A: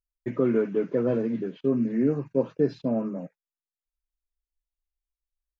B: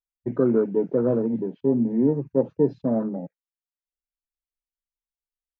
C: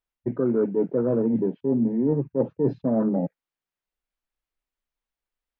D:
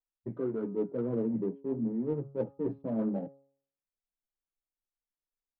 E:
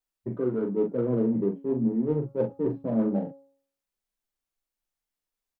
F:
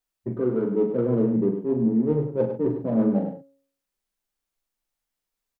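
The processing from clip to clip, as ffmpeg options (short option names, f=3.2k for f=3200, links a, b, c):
-af "afwtdn=0.0178,volume=3dB"
-af "bass=f=250:g=0,treble=f=4k:g=-12,areverse,acompressor=threshold=-29dB:ratio=6,areverse,volume=9dB"
-af "flanger=delay=8.7:depth=2:regen=-21:speed=0.93:shape=triangular,adynamicsmooth=sensitivity=3:basefreq=1.6k,bandreject=f=137.8:t=h:w=4,bandreject=f=275.6:t=h:w=4,bandreject=f=413.4:t=h:w=4,bandreject=f=551.2:t=h:w=4,bandreject=f=689:t=h:w=4,bandreject=f=826.8:t=h:w=4,bandreject=f=964.6:t=h:w=4,bandreject=f=1.1024k:t=h:w=4,bandreject=f=1.2402k:t=h:w=4,bandreject=f=1.378k:t=h:w=4,volume=-6dB"
-filter_complex "[0:a]asplit=2[a][b];[b]adelay=40,volume=-6dB[c];[a][c]amix=inputs=2:normalize=0,volume=5dB"
-af "aecho=1:1:101:0.376,volume=3dB"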